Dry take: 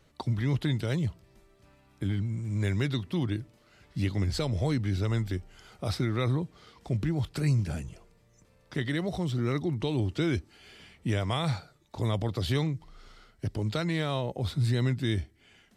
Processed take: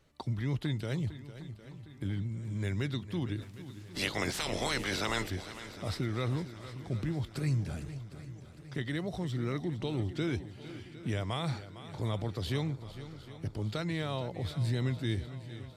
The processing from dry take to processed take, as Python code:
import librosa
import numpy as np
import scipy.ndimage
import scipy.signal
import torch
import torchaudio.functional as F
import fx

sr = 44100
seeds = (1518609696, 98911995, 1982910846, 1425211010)

y = fx.spec_clip(x, sr, under_db=29, at=(3.41, 5.29), fade=0.02)
y = fx.echo_swing(y, sr, ms=758, ratio=1.5, feedback_pct=49, wet_db=-14)
y = F.gain(torch.from_numpy(y), -5.0).numpy()